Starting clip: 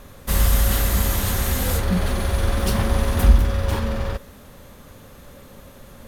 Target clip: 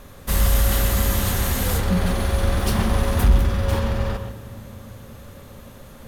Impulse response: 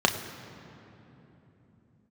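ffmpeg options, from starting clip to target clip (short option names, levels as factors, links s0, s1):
-filter_complex "[0:a]asoftclip=type=tanh:threshold=0.473,asplit=2[s0][s1];[1:a]atrim=start_sample=2205,adelay=124[s2];[s1][s2]afir=irnorm=-1:irlink=0,volume=0.0794[s3];[s0][s3]amix=inputs=2:normalize=0"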